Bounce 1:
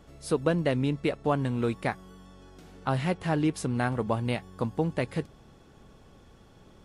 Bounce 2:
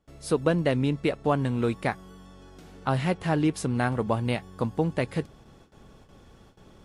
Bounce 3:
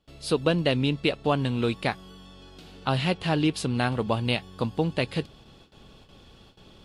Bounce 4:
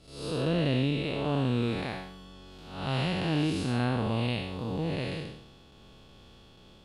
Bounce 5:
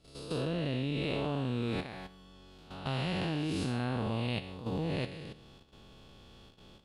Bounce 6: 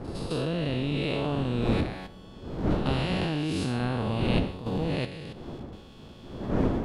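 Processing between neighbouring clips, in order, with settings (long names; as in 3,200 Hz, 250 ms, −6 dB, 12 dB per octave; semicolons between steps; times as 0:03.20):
noise gate with hold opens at −45 dBFS; level +2 dB
flat-topped bell 3,500 Hz +9.5 dB 1.1 octaves
spectrum smeared in time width 236 ms
output level in coarse steps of 11 dB
wind on the microphone 330 Hz −37 dBFS; level +4.5 dB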